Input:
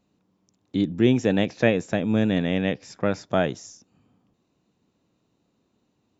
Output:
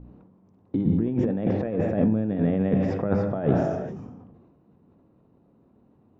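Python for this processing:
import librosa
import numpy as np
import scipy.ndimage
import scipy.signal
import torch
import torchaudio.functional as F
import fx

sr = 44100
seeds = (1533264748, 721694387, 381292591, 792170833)

p1 = 10.0 ** (-22.5 / 20.0) * np.tanh(x / 10.0 ** (-22.5 / 20.0))
p2 = x + (p1 * 10.0 ** (-11.5 / 20.0))
p3 = fx.rev_gated(p2, sr, seeds[0], gate_ms=470, shape='falling', drr_db=11.0)
p4 = fx.over_compress(p3, sr, threshold_db=-25.0, ratio=-0.5)
p5 = fx.low_shelf(p4, sr, hz=440.0, db=4.0)
p6 = fx.dmg_buzz(p5, sr, base_hz=60.0, harmonics=5, level_db=-43.0, tilt_db=-4, odd_only=False)
p7 = scipy.signal.sosfilt(scipy.signal.butter(2, 1100.0, 'lowpass', fs=sr, output='sos'), p6)
p8 = fx.hum_notches(p7, sr, base_hz=60, count=5)
y = fx.sustainer(p8, sr, db_per_s=39.0)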